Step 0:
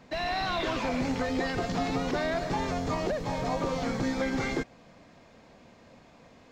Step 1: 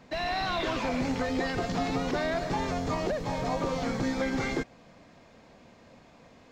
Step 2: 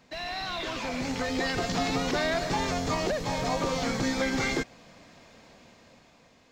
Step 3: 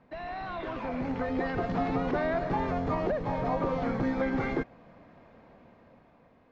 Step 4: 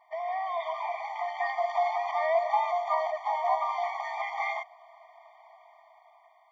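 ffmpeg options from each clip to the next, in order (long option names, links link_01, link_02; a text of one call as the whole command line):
ffmpeg -i in.wav -af anull out.wav
ffmpeg -i in.wav -af "highshelf=frequency=2100:gain=8.5,dynaudnorm=framelen=250:gausssize=9:maxgain=7.5dB,volume=-7dB" out.wav
ffmpeg -i in.wav -af "lowpass=1400" out.wav
ffmpeg -i in.wav -af "afftfilt=real='re*eq(mod(floor(b*sr/1024/610),2),1)':imag='im*eq(mod(floor(b*sr/1024/610),2),1)':win_size=1024:overlap=0.75,volume=6.5dB" out.wav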